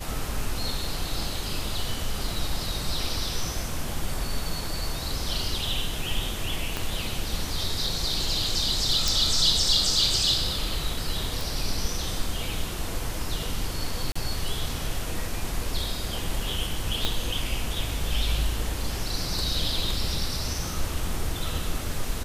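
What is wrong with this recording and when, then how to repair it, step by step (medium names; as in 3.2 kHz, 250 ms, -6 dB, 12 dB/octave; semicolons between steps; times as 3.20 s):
6.77 s: pop -13 dBFS
9.08 s: pop
11.41 s: pop
14.12–14.15 s: dropout 35 ms
17.05 s: pop -10 dBFS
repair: de-click; interpolate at 14.12 s, 35 ms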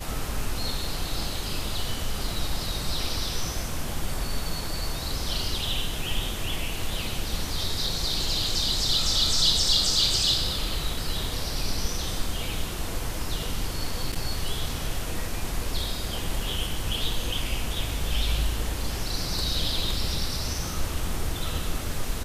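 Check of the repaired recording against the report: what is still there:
6.77 s: pop
17.05 s: pop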